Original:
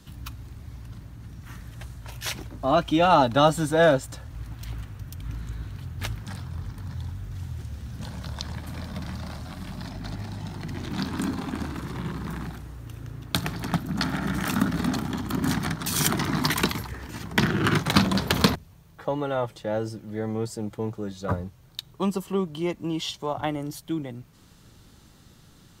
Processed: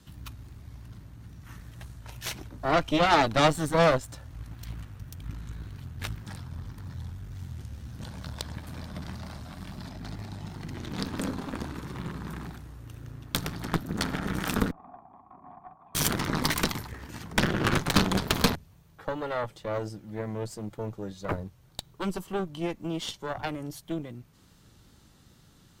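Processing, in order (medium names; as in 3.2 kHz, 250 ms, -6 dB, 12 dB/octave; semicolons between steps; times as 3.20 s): 14.71–15.95 s: cascade formant filter a; Chebyshev shaper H 8 -14 dB, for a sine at -3 dBFS; wow and flutter 28 cents; trim -4.5 dB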